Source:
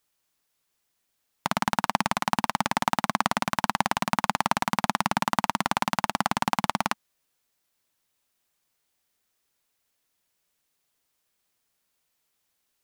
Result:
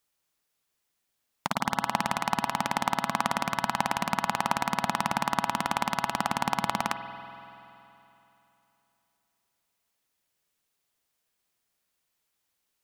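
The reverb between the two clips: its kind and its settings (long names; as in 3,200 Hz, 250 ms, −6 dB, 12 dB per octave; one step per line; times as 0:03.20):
spring reverb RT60 3.1 s, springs 47 ms, chirp 40 ms, DRR 7.5 dB
level −3 dB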